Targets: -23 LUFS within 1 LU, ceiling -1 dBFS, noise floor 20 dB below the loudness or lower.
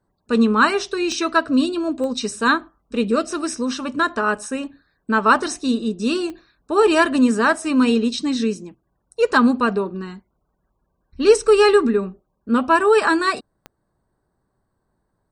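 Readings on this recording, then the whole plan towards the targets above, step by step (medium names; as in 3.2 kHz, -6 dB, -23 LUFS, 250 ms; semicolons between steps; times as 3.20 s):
clicks found 4; loudness -19.0 LUFS; peak level -2.0 dBFS; loudness target -23.0 LUFS
-> de-click; trim -4 dB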